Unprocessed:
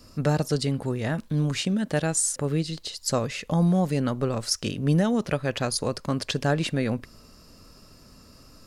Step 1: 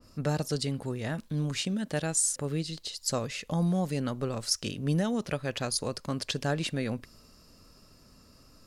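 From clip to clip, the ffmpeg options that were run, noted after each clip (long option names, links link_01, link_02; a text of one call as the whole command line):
ffmpeg -i in.wav -af "adynamicequalizer=threshold=0.01:dfrequency=2500:dqfactor=0.7:tfrequency=2500:tqfactor=0.7:attack=5:release=100:ratio=0.375:range=2:mode=boostabove:tftype=highshelf,volume=-6dB" out.wav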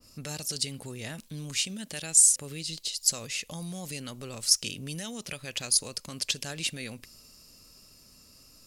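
ffmpeg -i in.wav -filter_complex "[0:a]acrossover=split=1500[link_01][link_02];[link_01]alimiter=level_in=5dB:limit=-24dB:level=0:latency=1:release=92,volume=-5dB[link_03];[link_03][link_02]amix=inputs=2:normalize=0,aexciter=amount=3:drive=3.9:freq=2200,volume=-4dB" out.wav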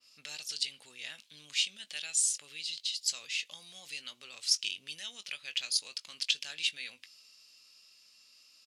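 ffmpeg -i in.wav -filter_complex "[0:a]bandpass=frequency=3200:width_type=q:width=1.7:csg=0,asplit=2[link_01][link_02];[link_02]adelay=20,volume=-12dB[link_03];[link_01][link_03]amix=inputs=2:normalize=0,volume=2.5dB" out.wav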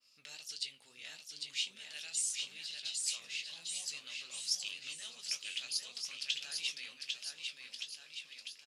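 ffmpeg -i in.wav -filter_complex "[0:a]flanger=delay=9.4:depth=9.7:regen=-50:speed=1.7:shape=triangular,asplit=2[link_01][link_02];[link_02]aecho=0:1:800|1520|2168|2751|3276:0.631|0.398|0.251|0.158|0.1[link_03];[link_01][link_03]amix=inputs=2:normalize=0,volume=-2.5dB" out.wav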